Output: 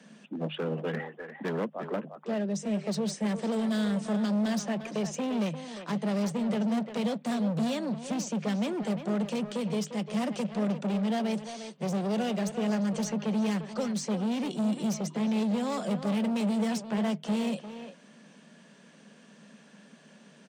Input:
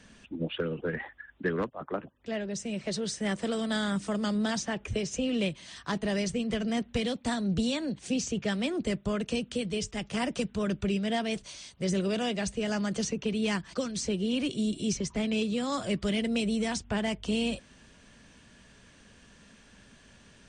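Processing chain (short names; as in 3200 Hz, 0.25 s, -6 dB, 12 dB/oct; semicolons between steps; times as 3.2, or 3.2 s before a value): low shelf 220 Hz +7 dB; overloaded stage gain 28 dB; rippled Chebyshev high-pass 150 Hz, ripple 6 dB; speakerphone echo 0.35 s, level -8 dB; gain +3.5 dB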